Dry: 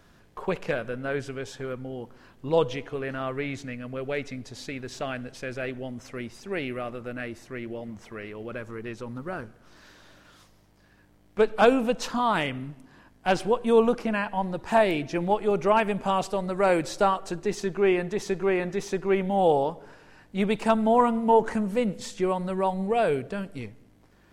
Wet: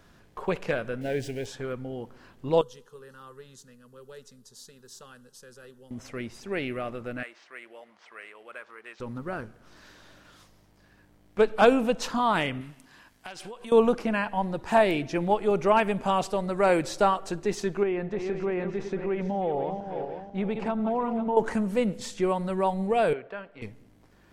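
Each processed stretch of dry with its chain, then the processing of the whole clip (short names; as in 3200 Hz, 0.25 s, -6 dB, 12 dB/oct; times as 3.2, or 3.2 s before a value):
1.01–1.46 zero-crossing step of -42 dBFS + Butterworth band-stop 1200 Hz, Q 1.3
2.61–5.91 pre-emphasis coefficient 0.8 + fixed phaser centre 450 Hz, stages 8
7.23–9 careless resampling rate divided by 4×, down none, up hold + HPF 900 Hz + air absorption 120 m
12.61–13.72 tilt shelf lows -7 dB, about 1100 Hz + compressor 20:1, threshold -36 dBFS
17.83–21.37 regenerating reverse delay 0.247 s, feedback 59%, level -10 dB + compressor 3:1, threshold -24 dBFS + tape spacing loss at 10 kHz 23 dB
23.13–23.62 LPF 4900 Hz + three-band isolator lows -17 dB, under 470 Hz, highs -15 dB, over 2900 Hz
whole clip: dry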